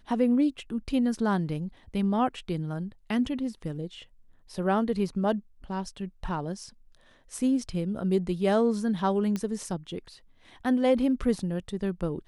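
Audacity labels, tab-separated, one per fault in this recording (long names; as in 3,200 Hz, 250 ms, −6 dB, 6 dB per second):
9.360000	9.360000	click −18 dBFS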